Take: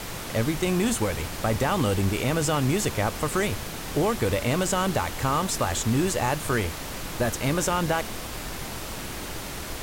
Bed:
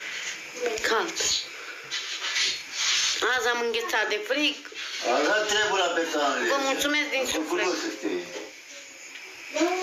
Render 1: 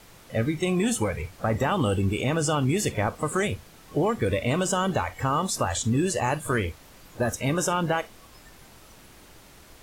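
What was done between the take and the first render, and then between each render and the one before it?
noise print and reduce 16 dB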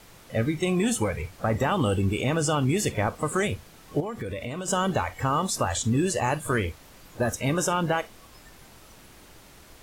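4–4.68 compressor 4:1, threshold -30 dBFS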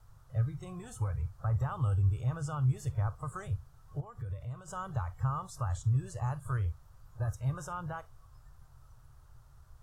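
EQ curve 130 Hz 0 dB, 220 Hz -29 dB, 1300 Hz -10 dB, 2200 Hz -29 dB, 5700 Hz -20 dB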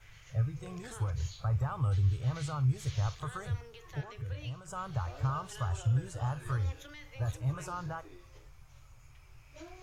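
add bed -26 dB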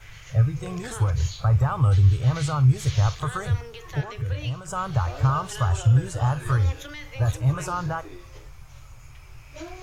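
gain +11 dB

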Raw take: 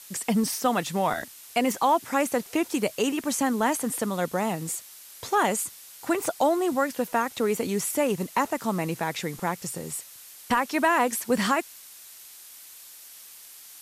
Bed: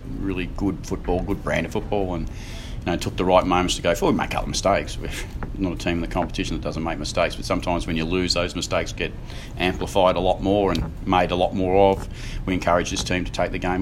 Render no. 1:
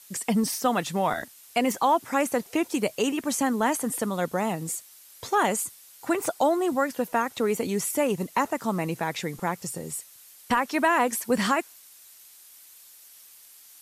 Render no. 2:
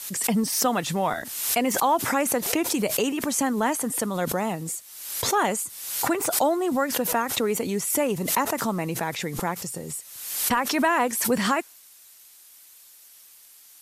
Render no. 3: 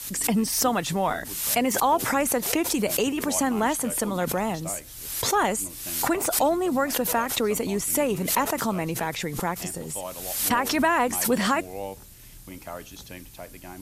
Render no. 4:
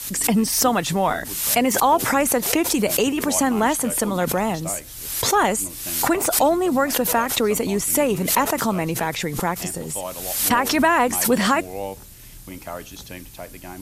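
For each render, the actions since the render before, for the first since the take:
denoiser 6 dB, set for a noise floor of -47 dBFS
backwards sustainer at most 55 dB/s
add bed -18.5 dB
gain +4.5 dB

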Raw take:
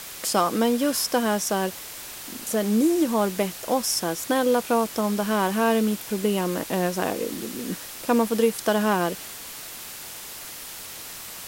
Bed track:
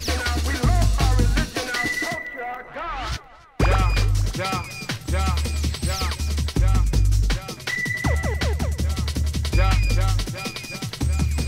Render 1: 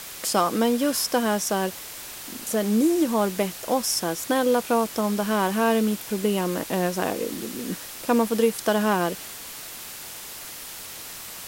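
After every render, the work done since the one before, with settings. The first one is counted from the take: nothing audible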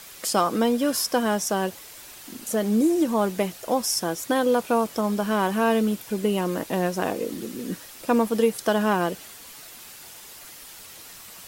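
denoiser 7 dB, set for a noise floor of -39 dBFS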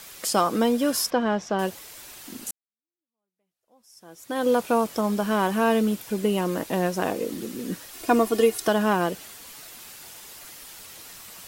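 1.1–1.59 air absorption 200 m; 2.51–4.47 fade in exponential; 7.93–8.68 comb 2.8 ms, depth 92%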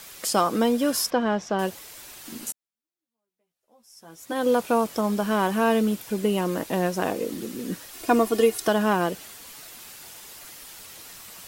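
2.24–4.33 doubler 13 ms -4.5 dB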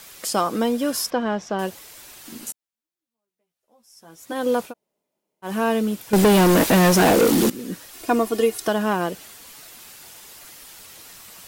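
4.69–5.47 room tone, crossfade 0.10 s; 6.13–7.5 sample leveller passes 5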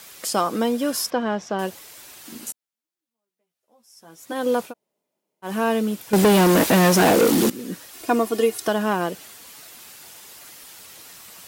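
HPF 89 Hz 6 dB/oct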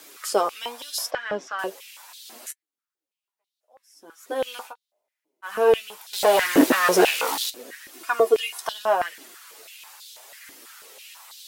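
flange 0.77 Hz, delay 6.2 ms, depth 6.3 ms, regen +39%; stepped high-pass 6.1 Hz 310–3800 Hz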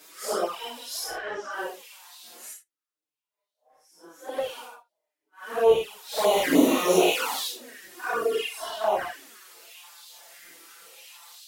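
phase scrambler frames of 0.2 s; envelope flanger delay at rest 6.8 ms, full sweep at -16 dBFS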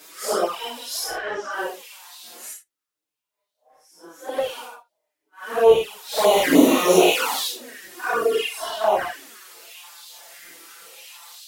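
gain +5 dB

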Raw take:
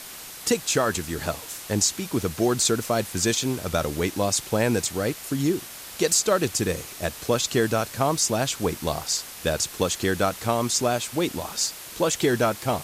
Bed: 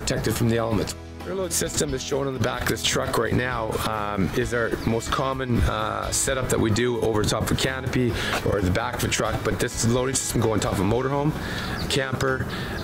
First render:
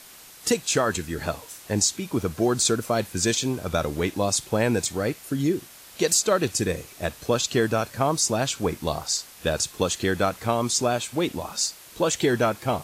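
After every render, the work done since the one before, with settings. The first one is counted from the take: noise print and reduce 7 dB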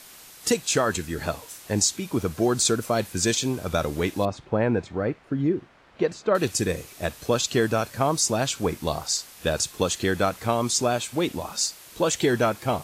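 4.25–6.35 LPF 1700 Hz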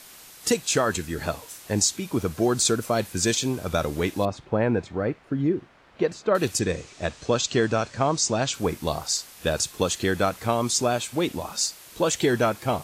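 6.59–8.54 steep low-pass 7800 Hz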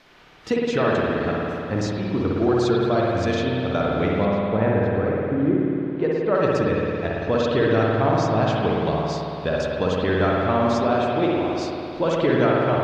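air absorption 260 m; spring tank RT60 2.8 s, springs 55 ms, chirp 55 ms, DRR -4 dB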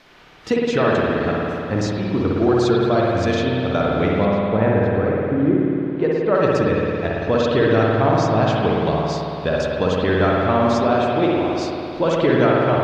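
gain +3 dB

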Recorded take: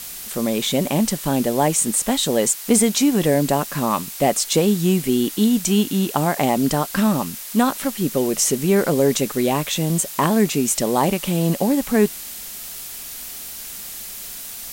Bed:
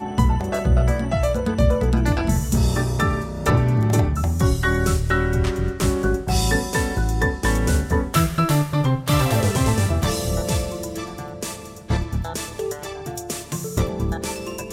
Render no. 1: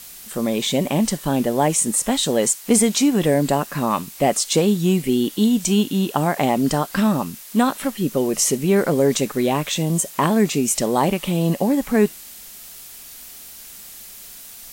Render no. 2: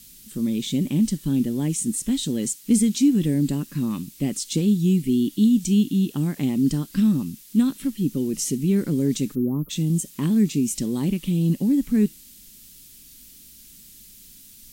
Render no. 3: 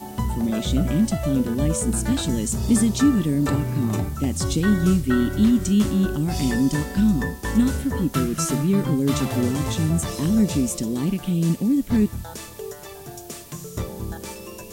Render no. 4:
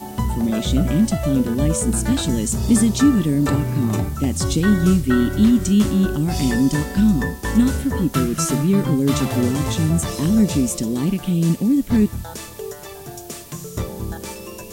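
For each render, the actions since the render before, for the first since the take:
noise print and reduce 6 dB
9.35–9.7 spectral delete 1400–11000 Hz; EQ curve 290 Hz 0 dB, 670 Hz -26 dB, 3400 Hz -8 dB
add bed -7.5 dB
gain +3 dB

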